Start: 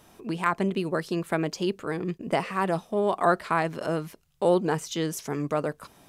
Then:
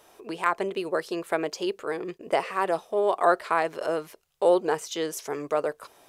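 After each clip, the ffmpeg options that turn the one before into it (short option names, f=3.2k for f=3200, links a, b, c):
-af "lowshelf=f=300:t=q:w=1.5:g=-11.5"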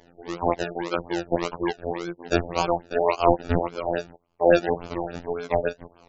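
-af "acrusher=samples=33:mix=1:aa=0.000001:lfo=1:lforange=19.8:lforate=1.8,afftfilt=real='hypot(re,im)*cos(PI*b)':imag='0':win_size=2048:overlap=0.75,afftfilt=real='re*lt(b*sr/1024,900*pow(7700/900,0.5+0.5*sin(2*PI*3.5*pts/sr)))':imag='im*lt(b*sr/1024,900*pow(7700/900,0.5+0.5*sin(2*PI*3.5*pts/sr)))':win_size=1024:overlap=0.75,volume=5.5dB"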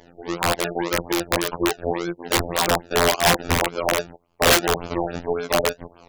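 -af "aeval=exprs='(mod(4.73*val(0)+1,2)-1)/4.73':c=same,volume=5dB"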